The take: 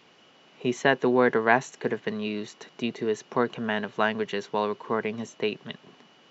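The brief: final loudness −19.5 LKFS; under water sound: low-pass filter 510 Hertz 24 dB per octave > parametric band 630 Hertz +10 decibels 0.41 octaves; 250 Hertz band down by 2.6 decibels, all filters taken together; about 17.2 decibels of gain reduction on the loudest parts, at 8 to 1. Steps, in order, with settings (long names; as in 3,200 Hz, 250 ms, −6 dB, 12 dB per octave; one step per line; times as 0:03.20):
parametric band 250 Hz −3.5 dB
downward compressor 8 to 1, threshold −34 dBFS
low-pass filter 510 Hz 24 dB per octave
parametric band 630 Hz +10 dB 0.41 octaves
level +22 dB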